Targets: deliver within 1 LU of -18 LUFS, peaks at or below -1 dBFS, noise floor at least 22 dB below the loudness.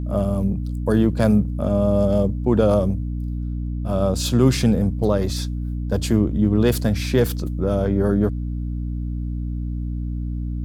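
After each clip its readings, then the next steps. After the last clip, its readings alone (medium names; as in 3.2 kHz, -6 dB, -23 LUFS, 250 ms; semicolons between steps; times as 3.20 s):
hum 60 Hz; highest harmonic 300 Hz; hum level -23 dBFS; loudness -21.5 LUFS; peak level -4.0 dBFS; loudness target -18.0 LUFS
-> de-hum 60 Hz, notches 5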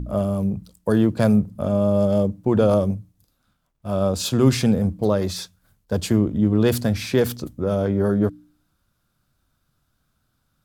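hum not found; loudness -21.0 LUFS; peak level -4.5 dBFS; loudness target -18.0 LUFS
-> trim +3 dB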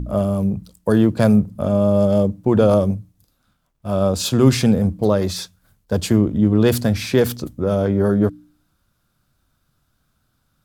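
loudness -18.0 LUFS; peak level -1.5 dBFS; noise floor -68 dBFS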